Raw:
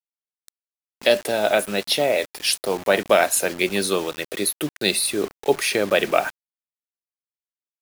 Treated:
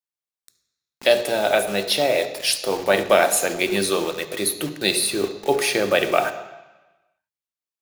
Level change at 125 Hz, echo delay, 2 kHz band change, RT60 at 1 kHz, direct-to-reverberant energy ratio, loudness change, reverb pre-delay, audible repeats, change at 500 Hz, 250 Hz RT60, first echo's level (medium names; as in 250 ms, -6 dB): +0.5 dB, no echo, +0.5 dB, 1.1 s, 8.0 dB, +0.5 dB, 3 ms, no echo, +0.5 dB, 1.1 s, no echo